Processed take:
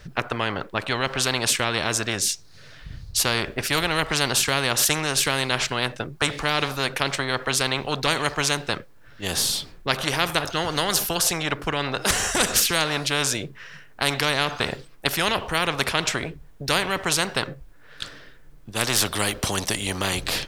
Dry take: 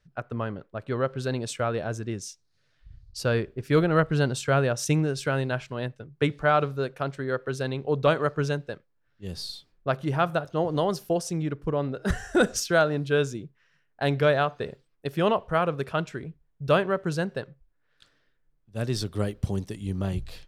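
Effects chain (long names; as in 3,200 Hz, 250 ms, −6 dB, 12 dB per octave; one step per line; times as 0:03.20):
every bin compressed towards the loudest bin 4 to 1
level +8 dB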